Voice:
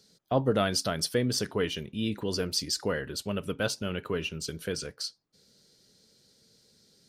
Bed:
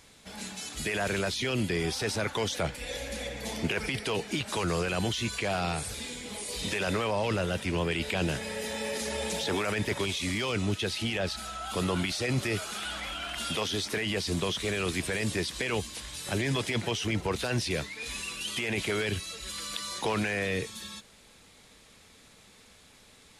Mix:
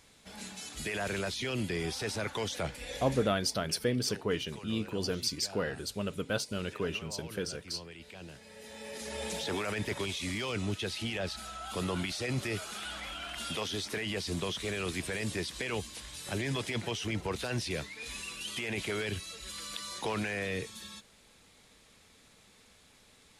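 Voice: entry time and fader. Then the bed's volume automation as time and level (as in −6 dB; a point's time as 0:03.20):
2.70 s, −3.0 dB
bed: 0:03.15 −4.5 dB
0:03.45 −18.5 dB
0:08.40 −18.5 dB
0:09.24 −4.5 dB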